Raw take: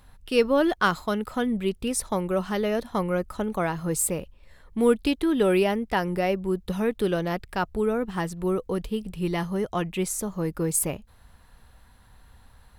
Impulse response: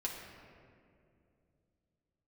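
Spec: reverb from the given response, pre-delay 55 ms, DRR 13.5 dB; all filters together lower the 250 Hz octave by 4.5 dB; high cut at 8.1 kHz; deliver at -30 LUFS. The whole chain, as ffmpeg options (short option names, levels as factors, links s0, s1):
-filter_complex "[0:a]lowpass=8100,equalizer=f=250:t=o:g=-6.5,asplit=2[s0][s1];[1:a]atrim=start_sample=2205,adelay=55[s2];[s1][s2]afir=irnorm=-1:irlink=0,volume=0.178[s3];[s0][s3]amix=inputs=2:normalize=0,volume=0.794"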